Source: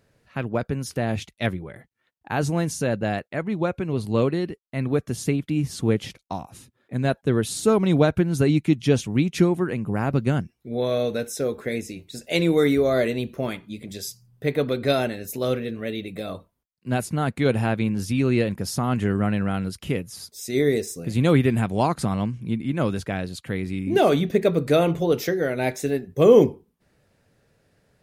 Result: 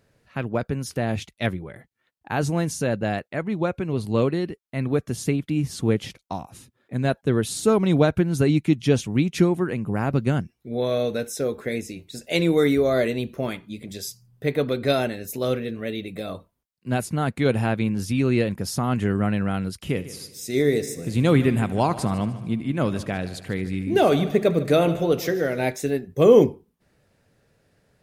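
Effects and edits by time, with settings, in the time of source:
0:19.74–0:25.66: echo machine with several playback heads 75 ms, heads first and second, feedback 51%, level −18 dB

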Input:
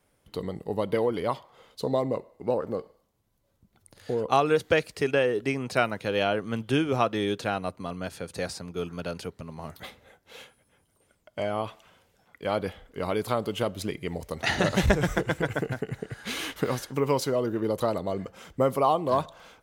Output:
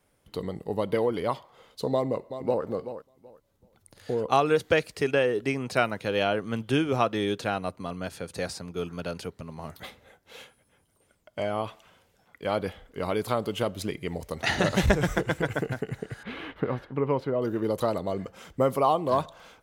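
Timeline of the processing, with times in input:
0:01.92–0:02.63: delay throw 380 ms, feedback 20%, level −11 dB
0:16.23–0:17.42: high-frequency loss of the air 500 metres

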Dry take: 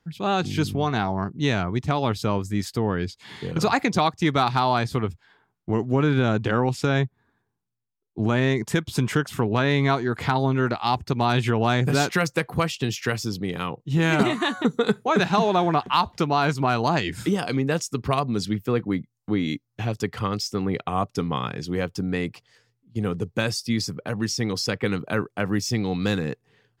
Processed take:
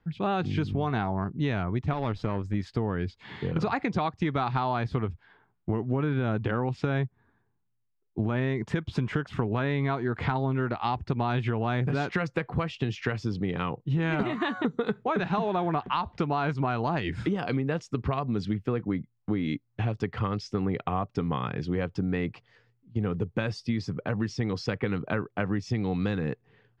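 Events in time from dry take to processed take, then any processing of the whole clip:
0:01.93–0:02.54: tube saturation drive 19 dB, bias 0.65
whole clip: low-pass filter 2,700 Hz 12 dB per octave; low-shelf EQ 71 Hz +9 dB; downward compressor, threshold −24 dBFS

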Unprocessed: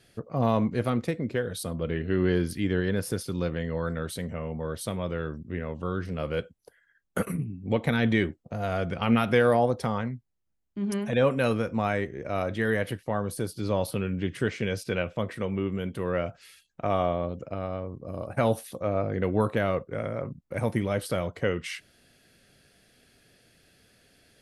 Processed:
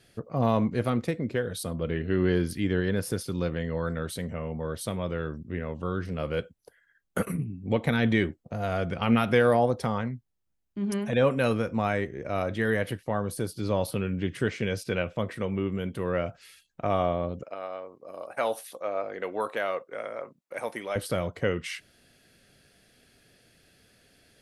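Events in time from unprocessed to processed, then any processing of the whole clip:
0:17.43–0:20.96: high-pass filter 540 Hz

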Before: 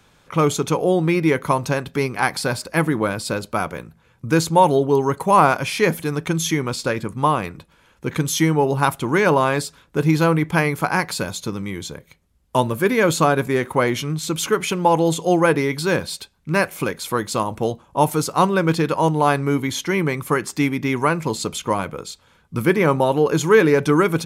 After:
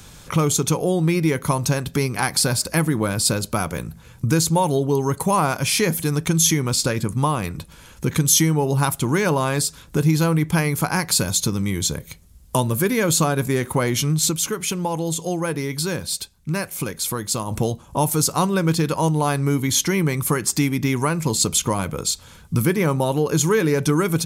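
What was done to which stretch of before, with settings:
0:14.25–0:17.59: duck −9 dB, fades 0.13 s
whole clip: low-shelf EQ 120 Hz +5.5 dB; downward compressor 2 to 1, threshold −34 dBFS; bass and treble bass +5 dB, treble +12 dB; level +6.5 dB

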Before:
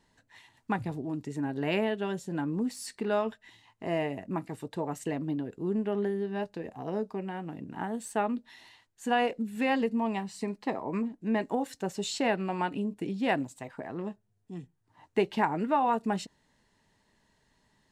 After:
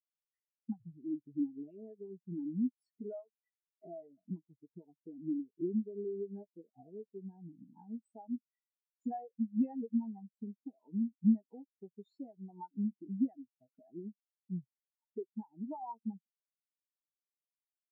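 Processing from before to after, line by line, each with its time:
0:03.13–0:03.85: meter weighting curve A
whole clip: downward compressor 10 to 1, threshold −41 dBFS; every bin expanded away from the loudest bin 4 to 1; level +10.5 dB

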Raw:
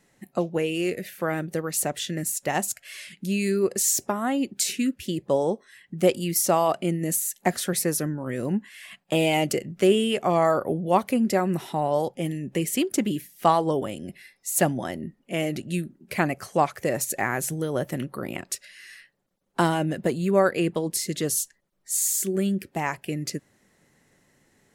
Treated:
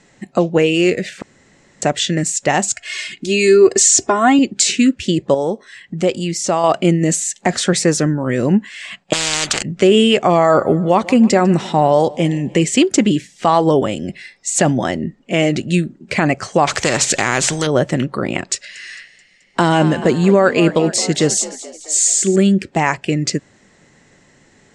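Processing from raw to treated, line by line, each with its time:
0:01.22–0:01.82: fill with room tone
0:02.76–0:04.39: comb filter 2.8 ms, depth 78%
0:05.34–0:06.64: downward compressor 1.5 to 1, threshold −37 dBFS
0:09.13–0:09.63: every bin compressed towards the loudest bin 10 to 1
0:10.38–0:12.65: repeating echo 149 ms, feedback 57%, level −23 dB
0:16.67–0:17.67: every bin compressed towards the loudest bin 2 to 1
0:18.54–0:22.36: echo with shifted repeats 216 ms, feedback 55%, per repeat +53 Hz, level −16 dB
whole clip: elliptic low-pass filter 7,800 Hz, stop band 70 dB; boost into a limiter +14 dB; level −1 dB

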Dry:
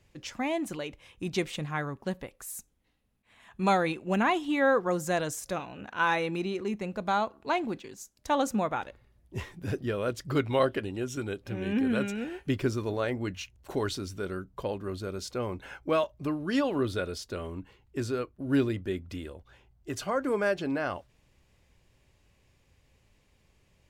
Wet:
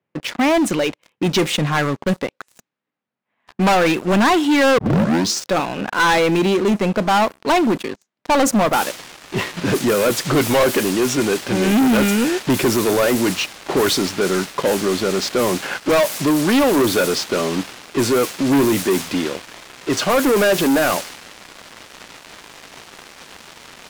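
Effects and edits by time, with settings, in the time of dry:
0:04.78: tape start 0.72 s
0:08.73: noise floor change −69 dB −44 dB
whole clip: high-pass filter 150 Hz 24 dB per octave; low-pass that shuts in the quiet parts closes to 1,700 Hz, open at −27 dBFS; leveller curve on the samples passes 5; level +1 dB

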